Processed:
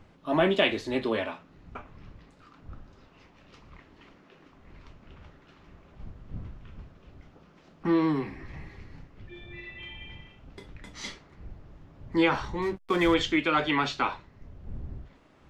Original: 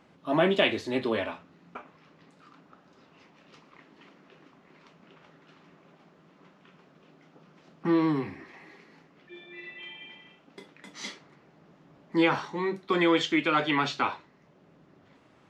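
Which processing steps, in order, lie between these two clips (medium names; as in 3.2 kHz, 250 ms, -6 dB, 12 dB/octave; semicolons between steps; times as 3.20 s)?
wind noise 92 Hz -46 dBFS; 12.62–13.14 s: hysteresis with a dead band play -35 dBFS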